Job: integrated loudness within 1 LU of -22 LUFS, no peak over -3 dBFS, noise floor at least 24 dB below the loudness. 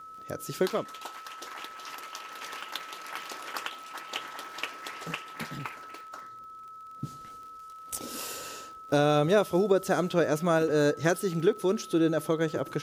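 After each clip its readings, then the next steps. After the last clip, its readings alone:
ticks 50/s; steady tone 1300 Hz; tone level -43 dBFS; loudness -29.5 LUFS; peak -11.5 dBFS; loudness target -22.0 LUFS
-> de-click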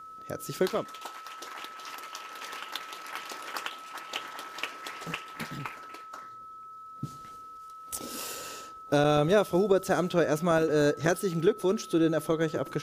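ticks 0.078/s; steady tone 1300 Hz; tone level -43 dBFS
-> notch 1300 Hz, Q 30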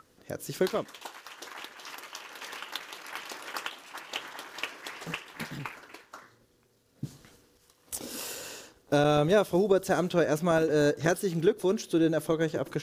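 steady tone none; loudness -29.0 LUFS; peak -12.0 dBFS; loudness target -22.0 LUFS
-> gain +7 dB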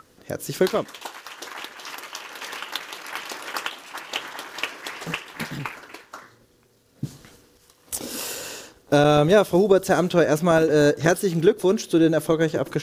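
loudness -22.0 LUFS; peak -5.0 dBFS; noise floor -58 dBFS

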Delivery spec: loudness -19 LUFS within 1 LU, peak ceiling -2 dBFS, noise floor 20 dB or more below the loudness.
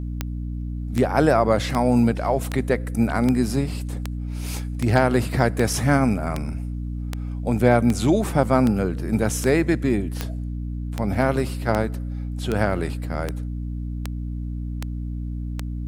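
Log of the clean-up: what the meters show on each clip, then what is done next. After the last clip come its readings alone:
clicks 21; hum 60 Hz; harmonics up to 300 Hz; hum level -26 dBFS; loudness -23.0 LUFS; peak -2.5 dBFS; loudness target -19.0 LUFS
-> de-click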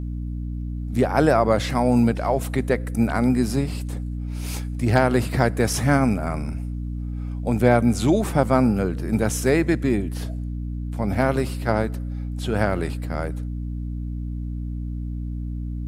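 clicks 0; hum 60 Hz; harmonics up to 300 Hz; hum level -26 dBFS
-> notches 60/120/180/240/300 Hz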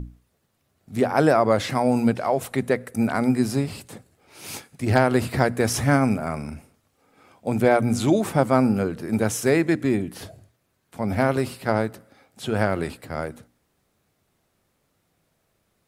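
hum none; loudness -22.5 LUFS; peak -4.0 dBFS; loudness target -19.0 LUFS
-> gain +3.5 dB; limiter -2 dBFS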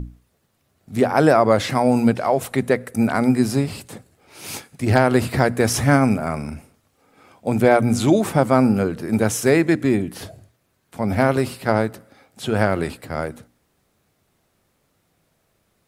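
loudness -19.5 LUFS; peak -2.0 dBFS; noise floor -67 dBFS

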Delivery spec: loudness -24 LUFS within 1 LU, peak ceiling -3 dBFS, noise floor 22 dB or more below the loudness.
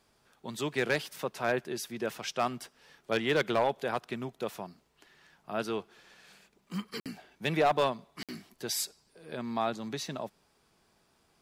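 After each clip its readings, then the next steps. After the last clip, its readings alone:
clipped 0.2%; flat tops at -19.0 dBFS; dropouts 2; longest dropout 57 ms; loudness -33.0 LUFS; peak -19.0 dBFS; loudness target -24.0 LUFS
-> clip repair -19 dBFS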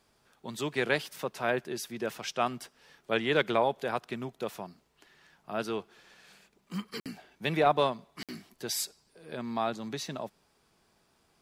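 clipped 0.0%; dropouts 2; longest dropout 57 ms
-> interpolate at 7/8.23, 57 ms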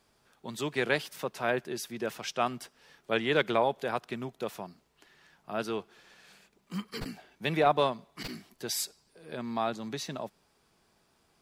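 dropouts 0; loudness -32.5 LUFS; peak -10.5 dBFS; loudness target -24.0 LUFS
-> gain +8.5 dB; limiter -3 dBFS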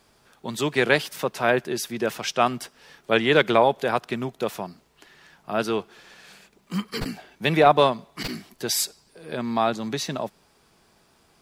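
loudness -24.0 LUFS; peak -3.0 dBFS; noise floor -61 dBFS

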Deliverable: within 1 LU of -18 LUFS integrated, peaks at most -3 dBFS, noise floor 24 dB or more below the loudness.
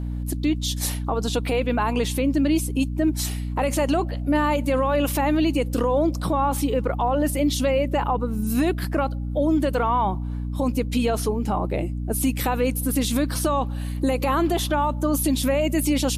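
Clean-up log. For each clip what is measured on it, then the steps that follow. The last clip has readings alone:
hum 60 Hz; harmonics up to 300 Hz; hum level -25 dBFS; loudness -23.0 LUFS; peak -11.5 dBFS; loudness target -18.0 LUFS
-> de-hum 60 Hz, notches 5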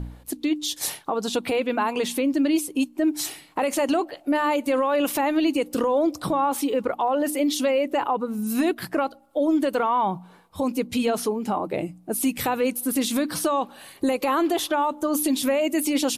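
hum none; loudness -24.0 LUFS; peak -12.5 dBFS; loudness target -18.0 LUFS
-> gain +6 dB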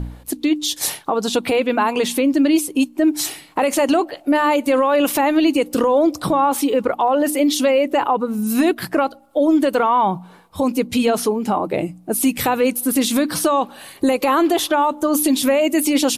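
loudness -18.0 LUFS; peak -6.5 dBFS; noise floor -45 dBFS

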